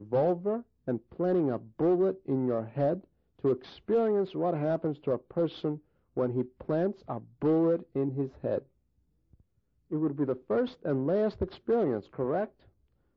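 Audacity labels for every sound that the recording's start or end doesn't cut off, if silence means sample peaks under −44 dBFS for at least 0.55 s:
9.910000	12.480000	sound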